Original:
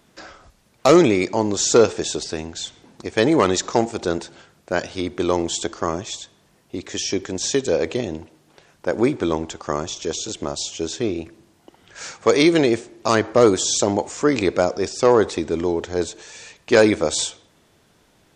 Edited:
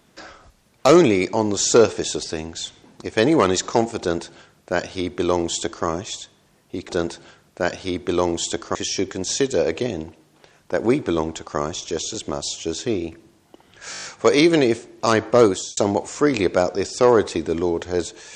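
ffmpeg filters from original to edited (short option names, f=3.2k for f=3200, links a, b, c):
-filter_complex "[0:a]asplit=10[a][b][c][d][e][f][g][h][i][j];[a]atrim=end=6.892[k];[b]atrim=start=3.998:end=5.862[l];[c]atrim=start=6.888:end=12.082[m];[d]atrim=start=12.058:end=12.082[n];[e]atrim=start=12.058:end=12.082[o];[f]atrim=start=12.058:end=12.082[p];[g]atrim=start=12.058:end=12.082[q];[h]atrim=start=12.058:end=12.082[r];[i]atrim=start=12.058:end=13.79,asetpts=PTS-STARTPTS,afade=t=out:st=1.392:d=0.34[s];[j]atrim=start=13.79,asetpts=PTS-STARTPTS,afade=t=in:d=0.004:c=hsin[t];[k][l]acrossfade=d=0.004:c1=hsin:c2=hsin[u];[u][m]acrossfade=d=0.004:c1=hsin:c2=hsin[v];[v][n]acrossfade=d=0.004:c1=hsin:c2=hsin[w];[w][o]acrossfade=d=0.004:c1=hsin:c2=hsin[x];[x][p]acrossfade=d=0.004:c1=hsin:c2=hsin[y];[y][q]acrossfade=d=0.004:c1=hsin:c2=hsin[z];[z][r]acrossfade=d=0.004:c1=hsin:c2=hsin[aa];[s][t]concat=n=2:v=0:a=1[ab];[aa][ab]acrossfade=d=0.004:c1=hsin:c2=hsin"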